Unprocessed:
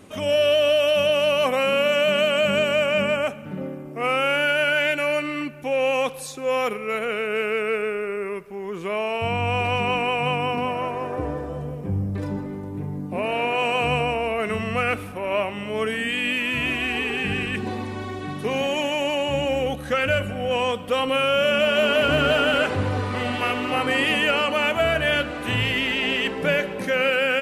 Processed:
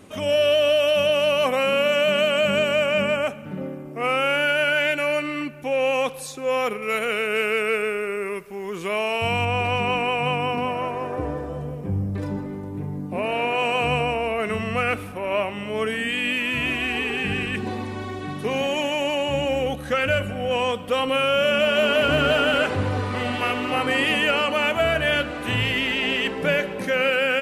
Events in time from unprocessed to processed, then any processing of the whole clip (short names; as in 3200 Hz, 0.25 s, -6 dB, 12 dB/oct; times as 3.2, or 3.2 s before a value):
6.82–9.45 high shelf 2700 Hz +9 dB